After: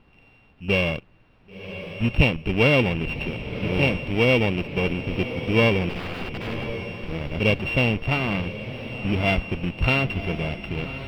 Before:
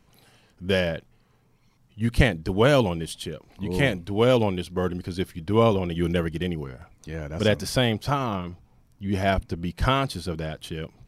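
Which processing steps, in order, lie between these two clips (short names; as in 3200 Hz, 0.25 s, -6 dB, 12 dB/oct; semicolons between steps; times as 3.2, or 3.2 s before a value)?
sample sorter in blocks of 16 samples; resonant high shelf 2000 Hz +6 dB, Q 3; in parallel at -9 dB: Schmitt trigger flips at -25.5 dBFS; on the sum: added noise pink -58 dBFS; 5.89–6.67 wrapped overs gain 23 dB; air absorption 410 m; on a send: diffused feedback echo 1.066 s, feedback 40%, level -10.5 dB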